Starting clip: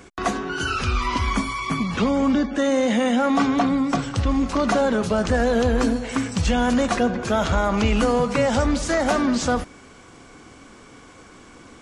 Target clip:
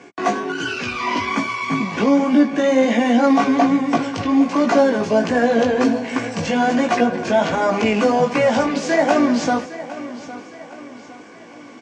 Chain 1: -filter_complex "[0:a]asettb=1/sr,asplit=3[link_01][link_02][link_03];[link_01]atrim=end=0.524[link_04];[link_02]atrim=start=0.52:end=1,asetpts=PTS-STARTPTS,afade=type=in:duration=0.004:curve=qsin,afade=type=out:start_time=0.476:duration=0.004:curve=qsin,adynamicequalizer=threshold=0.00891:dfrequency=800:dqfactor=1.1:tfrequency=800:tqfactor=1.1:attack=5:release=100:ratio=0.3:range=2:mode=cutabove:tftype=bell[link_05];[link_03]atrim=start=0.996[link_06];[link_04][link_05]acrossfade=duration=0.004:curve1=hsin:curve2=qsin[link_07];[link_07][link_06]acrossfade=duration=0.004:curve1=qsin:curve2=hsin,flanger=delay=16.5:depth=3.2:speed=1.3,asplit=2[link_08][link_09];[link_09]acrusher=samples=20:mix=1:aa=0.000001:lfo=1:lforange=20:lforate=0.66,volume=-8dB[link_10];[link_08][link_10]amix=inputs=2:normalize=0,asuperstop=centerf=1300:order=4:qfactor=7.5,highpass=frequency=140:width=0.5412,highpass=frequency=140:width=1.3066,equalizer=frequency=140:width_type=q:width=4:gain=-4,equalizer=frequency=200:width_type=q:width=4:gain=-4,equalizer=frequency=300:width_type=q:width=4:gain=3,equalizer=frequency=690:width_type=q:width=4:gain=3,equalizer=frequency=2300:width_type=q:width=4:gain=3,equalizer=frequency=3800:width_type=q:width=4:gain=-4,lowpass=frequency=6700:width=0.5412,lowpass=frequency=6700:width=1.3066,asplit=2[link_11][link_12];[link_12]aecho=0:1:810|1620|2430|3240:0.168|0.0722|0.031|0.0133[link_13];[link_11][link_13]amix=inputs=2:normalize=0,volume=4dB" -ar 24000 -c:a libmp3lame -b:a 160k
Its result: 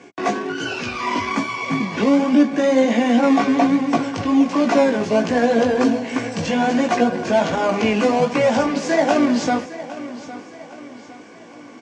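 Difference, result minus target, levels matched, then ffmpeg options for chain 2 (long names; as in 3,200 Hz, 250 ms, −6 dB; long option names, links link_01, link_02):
sample-and-hold swept by an LFO: distortion +9 dB
-filter_complex "[0:a]asettb=1/sr,asplit=3[link_01][link_02][link_03];[link_01]atrim=end=0.524[link_04];[link_02]atrim=start=0.52:end=1,asetpts=PTS-STARTPTS,afade=type=in:duration=0.004:curve=qsin,afade=type=out:start_time=0.476:duration=0.004:curve=qsin,adynamicequalizer=threshold=0.00891:dfrequency=800:dqfactor=1.1:tfrequency=800:tqfactor=1.1:attack=5:release=100:ratio=0.3:range=2:mode=cutabove:tftype=bell[link_05];[link_03]atrim=start=0.996[link_06];[link_04][link_05]acrossfade=duration=0.004:curve1=hsin:curve2=qsin[link_07];[link_07][link_06]acrossfade=duration=0.004:curve1=qsin:curve2=hsin,flanger=delay=16.5:depth=3.2:speed=1.3,asplit=2[link_08][link_09];[link_09]acrusher=samples=6:mix=1:aa=0.000001:lfo=1:lforange=6:lforate=0.66,volume=-8dB[link_10];[link_08][link_10]amix=inputs=2:normalize=0,asuperstop=centerf=1300:order=4:qfactor=7.5,highpass=frequency=140:width=0.5412,highpass=frequency=140:width=1.3066,equalizer=frequency=140:width_type=q:width=4:gain=-4,equalizer=frequency=200:width_type=q:width=4:gain=-4,equalizer=frequency=300:width_type=q:width=4:gain=3,equalizer=frequency=690:width_type=q:width=4:gain=3,equalizer=frequency=2300:width_type=q:width=4:gain=3,equalizer=frequency=3800:width_type=q:width=4:gain=-4,lowpass=frequency=6700:width=0.5412,lowpass=frequency=6700:width=1.3066,asplit=2[link_11][link_12];[link_12]aecho=0:1:810|1620|2430|3240:0.168|0.0722|0.031|0.0133[link_13];[link_11][link_13]amix=inputs=2:normalize=0,volume=4dB" -ar 24000 -c:a libmp3lame -b:a 160k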